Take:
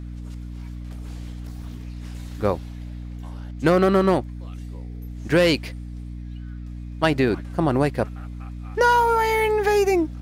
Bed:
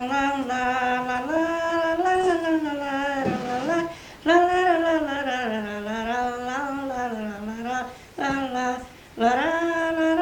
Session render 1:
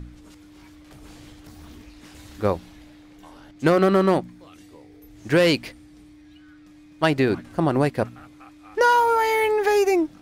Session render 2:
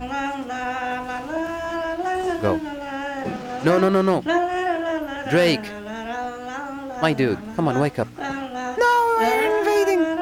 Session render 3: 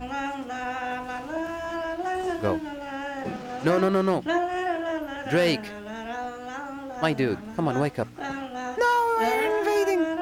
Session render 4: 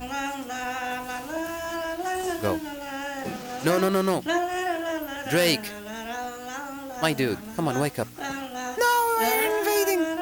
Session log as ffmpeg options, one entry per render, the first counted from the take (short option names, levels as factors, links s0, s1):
-af "bandreject=f=60:t=h:w=4,bandreject=f=120:t=h:w=4,bandreject=f=180:t=h:w=4,bandreject=f=240:t=h:w=4"
-filter_complex "[1:a]volume=0.708[s0];[0:a][s0]amix=inputs=2:normalize=0"
-af "volume=0.596"
-af "aemphasis=mode=production:type=75fm"